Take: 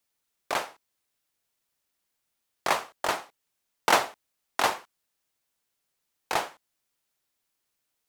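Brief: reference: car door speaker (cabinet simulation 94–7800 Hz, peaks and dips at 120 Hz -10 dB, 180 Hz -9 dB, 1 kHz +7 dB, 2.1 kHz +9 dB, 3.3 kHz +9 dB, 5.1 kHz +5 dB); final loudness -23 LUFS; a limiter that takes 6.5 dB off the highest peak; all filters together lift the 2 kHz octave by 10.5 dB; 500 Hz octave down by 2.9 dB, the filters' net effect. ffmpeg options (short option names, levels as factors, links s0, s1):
-af "equalizer=f=500:t=o:g=-5,equalizer=f=2000:t=o:g=6,alimiter=limit=0.299:level=0:latency=1,highpass=94,equalizer=f=120:t=q:w=4:g=-10,equalizer=f=180:t=q:w=4:g=-9,equalizer=f=1000:t=q:w=4:g=7,equalizer=f=2100:t=q:w=4:g=9,equalizer=f=3300:t=q:w=4:g=9,equalizer=f=5100:t=q:w=4:g=5,lowpass=f=7800:w=0.5412,lowpass=f=7800:w=1.3066,volume=1.12"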